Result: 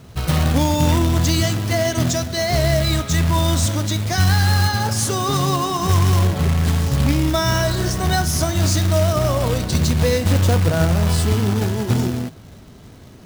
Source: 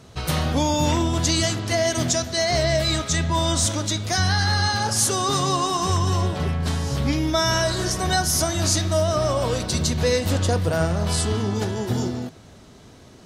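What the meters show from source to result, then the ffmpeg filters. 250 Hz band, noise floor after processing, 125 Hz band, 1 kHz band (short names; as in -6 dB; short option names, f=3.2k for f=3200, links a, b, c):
+4.5 dB, -41 dBFS, +7.0 dB, +1.5 dB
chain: -af "bass=f=250:g=6,treble=f=4k:g=-4,acrusher=bits=3:mode=log:mix=0:aa=0.000001,volume=1dB"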